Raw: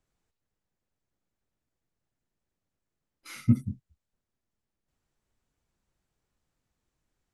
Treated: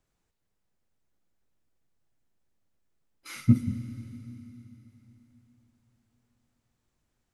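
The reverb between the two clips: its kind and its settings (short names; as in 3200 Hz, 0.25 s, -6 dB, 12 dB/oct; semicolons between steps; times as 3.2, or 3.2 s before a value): Schroeder reverb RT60 3.8 s, combs from 33 ms, DRR 10 dB; gain +2 dB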